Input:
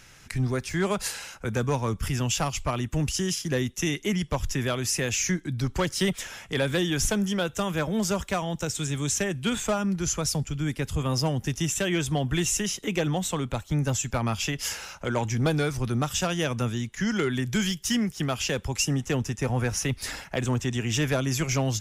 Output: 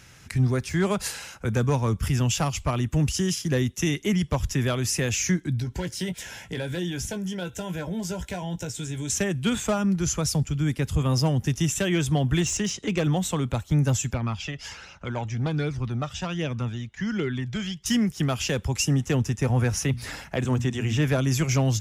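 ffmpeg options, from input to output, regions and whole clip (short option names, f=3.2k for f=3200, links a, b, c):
-filter_complex "[0:a]asettb=1/sr,asplit=3[a][b][c];[a]atrim=end=5.594[d];[b]atrim=start=5.59:end=9.1,asetpts=PTS-STARTPTS,afade=t=in:d=0.004:c=qsin,afade=t=out:st=3.506:d=0.004:c=qsin,acompressor=threshold=-35dB:ratio=2:attack=3.2:release=140:knee=1:detection=peak,asuperstop=centerf=1200:order=20:qfactor=5,asplit=2[e][f];[f]adelay=17,volume=-8.5dB[g];[e][g]amix=inputs=2:normalize=0,atrim=end_sample=154791[h];[c]atrim=start=9.096[i];[d][h]acrossfade=d=0.004:c1=hsin:c2=qsin[j];[j][i]acrossfade=d=0.004:c1=qsin:c2=hsin,asettb=1/sr,asplit=3[k][l][m];[k]atrim=end=12.414[n];[l]atrim=start=12.41:end=13.04,asetpts=PTS-STARTPTS,afade=t=in:d=0.004:c=qsin,afade=t=out:st=0.626:d=0.004:c=qsin,lowpass=f=7.9k:w=0.5412,lowpass=f=7.9k:w=1.3066,aeval=exprs='clip(val(0),-1,0.0708)':c=same[o];[m]atrim=start=13.036[p];[n][o]acrossfade=d=0.004:c1=hsin:c2=qsin[q];[q][p]acrossfade=d=0.004:c1=qsin:c2=hsin,asettb=1/sr,asplit=3[r][s][t];[r]atrim=end=14.144[u];[s]atrim=start=14.14:end=17.86,asetpts=PTS-STARTPTS,afade=t=in:d=0.004:c=qsin,afade=t=out:st=3.716:d=0.004:c=qsin,lowpass=4.7k,equalizer=f=86:t=o:w=2.1:g=-3.5,flanger=delay=0.3:depth=1.4:regen=38:speed=1.3:shape=triangular[v];[t]atrim=start=17.856[w];[u][v]acrossfade=d=0.004:c1=hsin:c2=qsin[x];[x][w]acrossfade=d=0.004:c1=qsin:c2=hsin,asettb=1/sr,asplit=3[y][z][aa];[y]atrim=end=19.844[ab];[z]atrim=start=19.84:end=21.18,asetpts=PTS-STARTPTS,afade=t=in:d=0.004:c=qsin,afade=t=out:st=1.336:d=0.004:c=qsin,acrossover=split=3100[ac][ad];[ad]acompressor=threshold=-38dB:ratio=4:attack=1:release=60[ae];[ac][ae]amix=inputs=2:normalize=0,bandreject=f=60:t=h:w=6,bandreject=f=120:t=h:w=6,bandreject=f=180:t=h:w=6,bandreject=f=240:t=h:w=6[af];[aa]atrim=start=21.176[ag];[ab][af]acrossfade=d=0.004:c1=hsin:c2=qsin[ah];[ah][ag]acrossfade=d=0.004:c1=qsin:c2=hsin,highpass=58,lowshelf=f=190:g=7.5"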